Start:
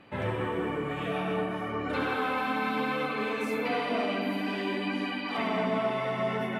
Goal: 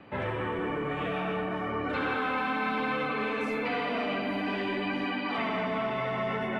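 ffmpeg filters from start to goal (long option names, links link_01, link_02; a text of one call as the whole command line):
ffmpeg -i in.wav -filter_complex "[0:a]aemphasis=mode=reproduction:type=75fm,acrossover=split=300|1200|3300[link_01][link_02][link_03][link_04];[link_01]asoftclip=type=tanh:threshold=-39.5dB[link_05];[link_02]alimiter=level_in=8dB:limit=-24dB:level=0:latency=1,volume=-8dB[link_06];[link_05][link_06][link_03][link_04]amix=inputs=4:normalize=0,volume=3.5dB" out.wav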